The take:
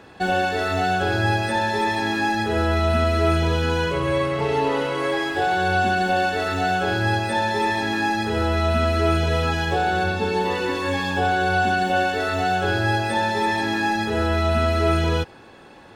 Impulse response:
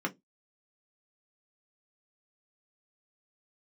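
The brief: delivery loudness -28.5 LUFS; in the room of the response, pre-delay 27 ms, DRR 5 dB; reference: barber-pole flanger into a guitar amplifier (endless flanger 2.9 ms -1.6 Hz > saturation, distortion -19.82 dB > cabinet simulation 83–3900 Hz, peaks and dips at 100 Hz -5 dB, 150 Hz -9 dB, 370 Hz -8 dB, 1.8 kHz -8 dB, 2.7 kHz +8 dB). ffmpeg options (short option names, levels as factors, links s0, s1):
-filter_complex "[0:a]asplit=2[s0][s1];[1:a]atrim=start_sample=2205,adelay=27[s2];[s1][s2]afir=irnorm=-1:irlink=0,volume=0.299[s3];[s0][s3]amix=inputs=2:normalize=0,asplit=2[s4][s5];[s5]adelay=2.9,afreqshift=-1.6[s6];[s4][s6]amix=inputs=2:normalize=1,asoftclip=threshold=0.178,highpass=83,equalizer=f=100:t=q:w=4:g=-5,equalizer=f=150:t=q:w=4:g=-9,equalizer=f=370:t=q:w=4:g=-8,equalizer=f=1800:t=q:w=4:g=-8,equalizer=f=2700:t=q:w=4:g=8,lowpass=f=3900:w=0.5412,lowpass=f=3900:w=1.3066,volume=0.75"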